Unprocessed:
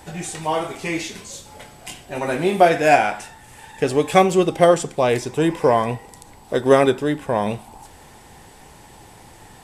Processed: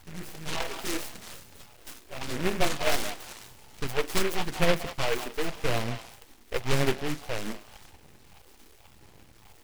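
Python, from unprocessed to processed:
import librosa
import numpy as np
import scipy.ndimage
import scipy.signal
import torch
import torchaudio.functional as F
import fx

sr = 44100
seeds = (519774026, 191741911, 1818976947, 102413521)

y = fx.peak_eq(x, sr, hz=1100.0, db=10.5, octaves=1.7, at=(0.6, 1.17))
y = np.maximum(y, 0.0)
y = fx.phaser_stages(y, sr, stages=4, low_hz=120.0, high_hz=1800.0, hz=0.9, feedback_pct=25)
y = fx.echo_stepped(y, sr, ms=184, hz=950.0, octaves=1.4, feedback_pct=70, wet_db=-7)
y = fx.noise_mod_delay(y, sr, seeds[0], noise_hz=1700.0, depth_ms=0.18)
y = F.gain(torch.from_numpy(y), -4.0).numpy()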